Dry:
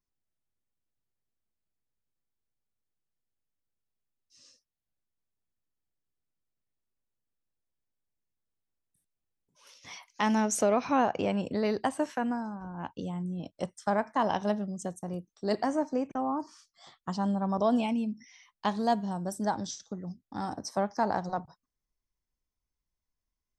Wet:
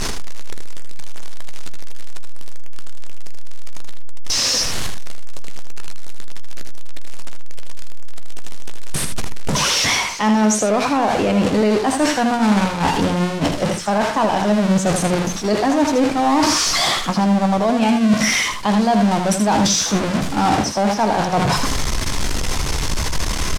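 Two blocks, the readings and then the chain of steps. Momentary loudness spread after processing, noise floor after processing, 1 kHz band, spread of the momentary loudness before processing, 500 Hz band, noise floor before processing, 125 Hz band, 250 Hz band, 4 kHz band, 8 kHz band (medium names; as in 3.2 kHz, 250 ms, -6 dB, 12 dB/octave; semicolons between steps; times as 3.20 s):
8 LU, -23 dBFS, +13.0 dB, 13 LU, +12.0 dB, under -85 dBFS, +17.0 dB, +14.5 dB, +24.5 dB, +21.0 dB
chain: jump at every zero crossing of -28 dBFS; low-pass 7.7 kHz 12 dB/octave; hum notches 60/120/180/240 Hz; gate -31 dBFS, range -6 dB; reverse; compression 8:1, threshold -38 dBFS, peak gain reduction 18 dB; reverse; doubling 14 ms -13 dB; on a send: delay 79 ms -7 dB; on the sum: loudness maximiser +30 dB; trim -7 dB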